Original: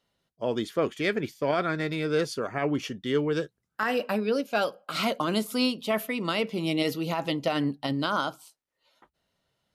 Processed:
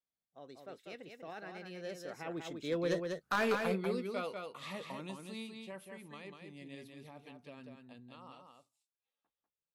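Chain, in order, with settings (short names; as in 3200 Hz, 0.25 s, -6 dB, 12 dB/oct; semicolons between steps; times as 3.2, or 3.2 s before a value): Doppler pass-by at 3.21, 47 m/s, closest 8.2 m; hard clip -27.5 dBFS, distortion -13 dB; echo 0.194 s -5 dB; gain +1 dB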